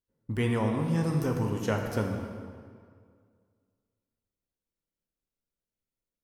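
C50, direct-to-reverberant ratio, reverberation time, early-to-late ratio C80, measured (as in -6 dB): 4.0 dB, 2.0 dB, 2.0 s, 5.5 dB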